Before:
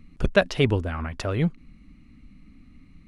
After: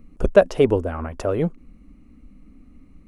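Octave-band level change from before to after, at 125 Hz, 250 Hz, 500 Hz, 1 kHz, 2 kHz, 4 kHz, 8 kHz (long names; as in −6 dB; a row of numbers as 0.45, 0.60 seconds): −2.0, +2.0, +7.5, +3.5, −3.5, −6.5, −0.5 decibels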